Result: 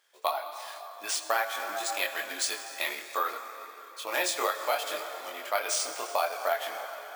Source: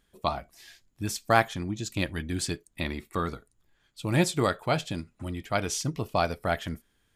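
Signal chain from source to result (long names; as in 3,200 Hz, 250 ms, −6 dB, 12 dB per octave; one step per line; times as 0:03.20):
in parallel at −3 dB: hard clipping −16.5 dBFS, distortion −14 dB
on the sum: convolution reverb RT60 4.1 s, pre-delay 18 ms, DRR 9.5 dB
multi-voice chorus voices 4, 0.38 Hz, delay 23 ms, depth 4.9 ms
bad sample-rate conversion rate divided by 3×, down none, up hold
high-pass filter 560 Hz 24 dB per octave
downward compressor 6 to 1, threshold −27 dBFS, peak gain reduction 9 dB
level +3 dB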